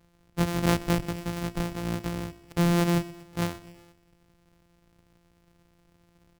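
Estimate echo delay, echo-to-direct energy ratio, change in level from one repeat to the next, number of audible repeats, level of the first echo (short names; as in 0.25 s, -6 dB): 0.125 s, -16.5 dB, -5.0 dB, 3, -18.0 dB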